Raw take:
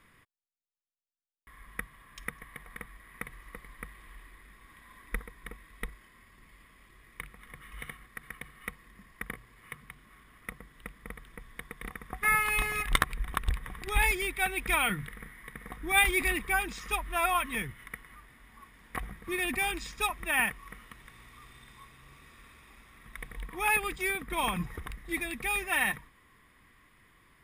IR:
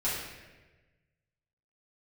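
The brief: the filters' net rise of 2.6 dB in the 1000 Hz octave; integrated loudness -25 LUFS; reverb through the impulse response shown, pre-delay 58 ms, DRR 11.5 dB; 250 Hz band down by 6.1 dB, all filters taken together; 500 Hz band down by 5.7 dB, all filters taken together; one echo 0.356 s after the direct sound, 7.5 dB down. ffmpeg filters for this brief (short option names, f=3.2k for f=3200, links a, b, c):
-filter_complex "[0:a]equalizer=f=250:t=o:g=-6.5,equalizer=f=500:t=o:g=-8,equalizer=f=1k:t=o:g=6,aecho=1:1:356:0.422,asplit=2[a][b];[1:a]atrim=start_sample=2205,adelay=58[c];[b][c]afir=irnorm=-1:irlink=0,volume=-19dB[d];[a][d]amix=inputs=2:normalize=0,volume=4dB"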